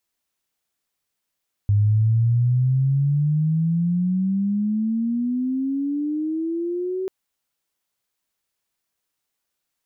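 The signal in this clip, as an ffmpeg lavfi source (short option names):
-f lavfi -i "aevalsrc='pow(10,(-14-9*t/5.39)/20)*sin(2*PI*101*5.39/(23*log(2)/12)*(exp(23*log(2)/12*t/5.39)-1))':d=5.39:s=44100"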